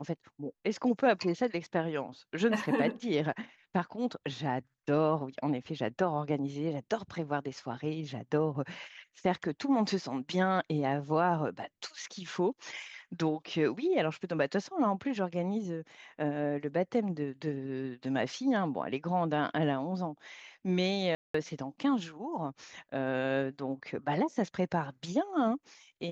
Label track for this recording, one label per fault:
21.150000	21.340000	dropout 194 ms

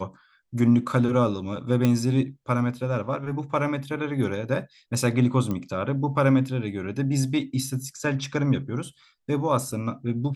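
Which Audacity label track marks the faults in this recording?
1.850000	1.850000	pop -10 dBFS
5.510000	5.510000	pop -17 dBFS

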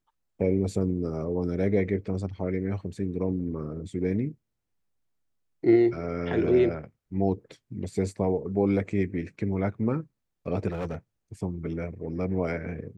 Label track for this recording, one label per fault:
10.680000	10.950000	clipped -27.5 dBFS

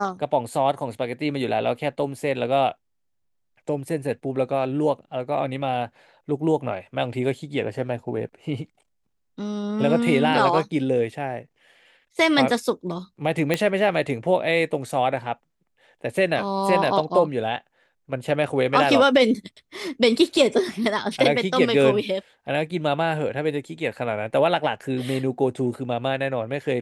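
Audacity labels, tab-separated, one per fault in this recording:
13.540000	13.540000	pop -8 dBFS

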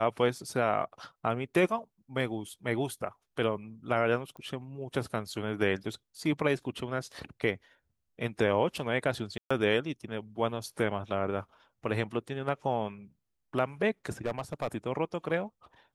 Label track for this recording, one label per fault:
4.370000	4.370000	pop -34 dBFS
9.380000	9.510000	dropout 125 ms
14.260000	14.680000	clipped -25.5 dBFS

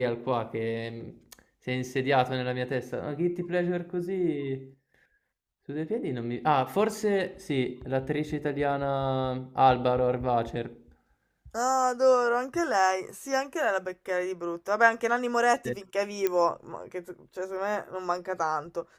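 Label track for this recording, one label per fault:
16.270000	16.270000	pop -13 dBFS

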